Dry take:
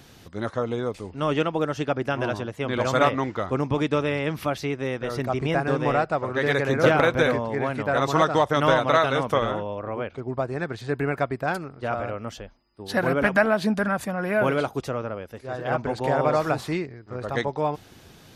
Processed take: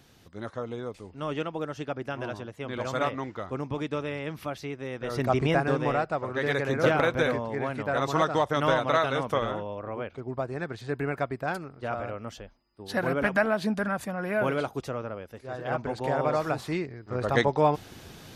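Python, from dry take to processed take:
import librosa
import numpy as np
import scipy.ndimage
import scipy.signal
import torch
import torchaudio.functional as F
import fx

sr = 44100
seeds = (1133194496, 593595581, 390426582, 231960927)

y = fx.gain(x, sr, db=fx.line((4.89, -8.0), (5.31, 2.0), (5.96, -4.5), (16.63, -4.5), (17.19, 3.0)))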